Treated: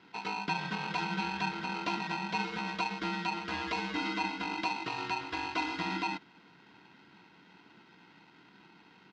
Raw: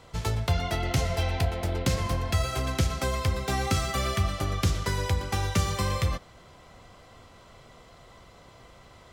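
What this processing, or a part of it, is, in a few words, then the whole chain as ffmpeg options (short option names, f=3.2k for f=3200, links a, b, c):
ring modulator pedal into a guitar cabinet: -af "aecho=1:1:1.7:0.68,aeval=exprs='val(0)*sgn(sin(2*PI*860*n/s))':c=same,highpass=99,equalizer=f=190:t=q:w=4:g=7,equalizer=f=290:t=q:w=4:g=5,equalizer=f=780:t=q:w=4:g=-10,lowpass=f=4.3k:w=0.5412,lowpass=f=4.3k:w=1.3066,volume=-8.5dB"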